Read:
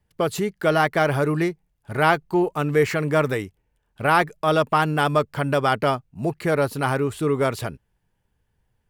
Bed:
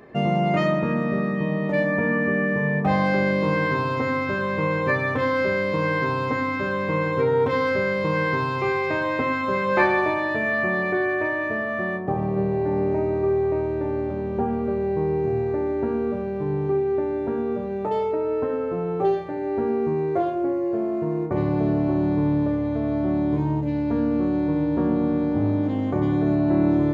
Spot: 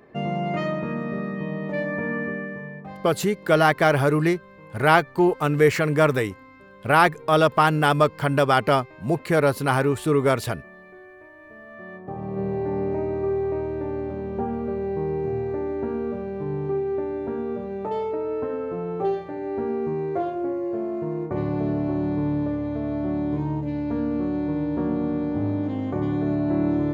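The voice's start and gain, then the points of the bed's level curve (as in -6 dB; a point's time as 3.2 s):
2.85 s, +1.5 dB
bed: 2.21 s -5 dB
3.18 s -23 dB
11.31 s -23 dB
12.48 s -3 dB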